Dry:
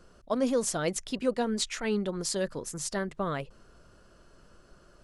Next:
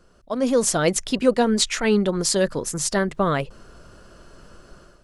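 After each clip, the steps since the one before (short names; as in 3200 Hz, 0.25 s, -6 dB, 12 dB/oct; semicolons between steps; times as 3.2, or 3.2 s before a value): AGC gain up to 10.5 dB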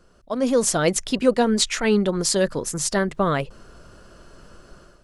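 nothing audible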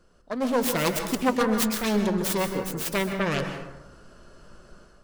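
self-modulated delay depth 0.63 ms; flange 0.78 Hz, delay 3.5 ms, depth 2.4 ms, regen -81%; plate-style reverb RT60 0.94 s, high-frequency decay 0.5×, pre-delay 0.115 s, DRR 6 dB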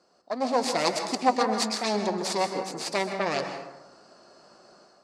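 speaker cabinet 300–8200 Hz, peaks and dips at 460 Hz -3 dB, 750 Hz +9 dB, 1500 Hz -6 dB, 3100 Hz -8 dB, 4600 Hz +9 dB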